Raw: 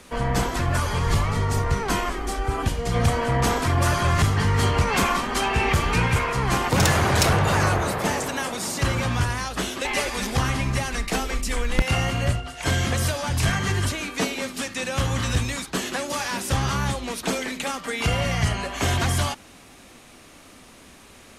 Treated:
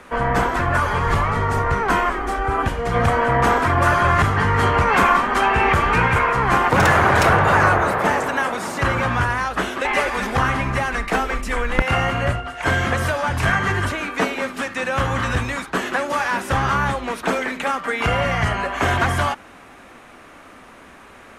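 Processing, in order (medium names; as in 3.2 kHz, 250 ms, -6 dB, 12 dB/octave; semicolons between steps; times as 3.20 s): FFT filter 140 Hz 0 dB, 1.5 kHz +10 dB, 4.6 kHz -6 dB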